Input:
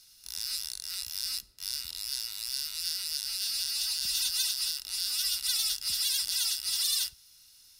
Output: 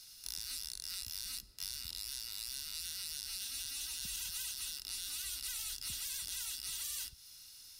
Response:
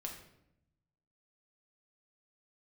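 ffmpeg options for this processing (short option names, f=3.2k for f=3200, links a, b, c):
-filter_complex "[0:a]afftfilt=real='re*lt(hypot(re,im),0.0562)':imag='im*lt(hypot(re,im),0.0562)':win_size=1024:overlap=0.75,acrossover=split=350[a][b];[b]acompressor=threshold=-41dB:ratio=5[c];[a][c]amix=inputs=2:normalize=0,volume=2.5dB"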